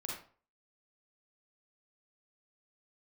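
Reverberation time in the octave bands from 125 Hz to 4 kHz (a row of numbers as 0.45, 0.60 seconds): 0.45, 0.40, 0.45, 0.45, 0.35, 0.30 seconds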